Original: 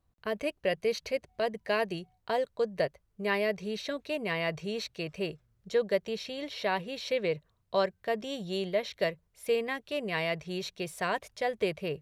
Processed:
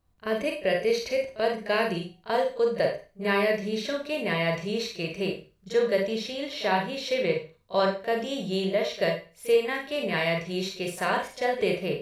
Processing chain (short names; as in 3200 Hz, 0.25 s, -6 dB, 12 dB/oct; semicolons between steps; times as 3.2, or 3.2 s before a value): pre-echo 37 ms -17 dB; Schroeder reverb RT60 0.33 s, combs from 32 ms, DRR 2 dB; gain +3 dB